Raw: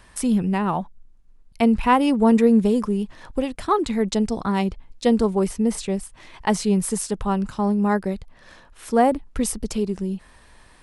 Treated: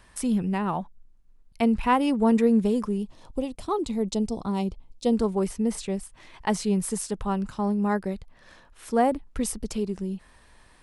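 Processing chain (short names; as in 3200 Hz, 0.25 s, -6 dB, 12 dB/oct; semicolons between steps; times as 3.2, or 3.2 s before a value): 2.98–5.13 bell 1700 Hz -14.5 dB 0.85 oct; gain -4.5 dB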